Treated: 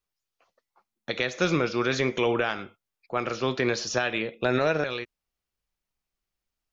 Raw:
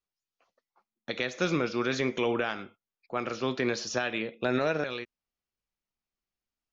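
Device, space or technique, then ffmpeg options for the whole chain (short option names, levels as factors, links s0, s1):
low shelf boost with a cut just above: -af "lowshelf=f=84:g=6,equalizer=f=240:t=o:w=0.63:g=-4,volume=1.58"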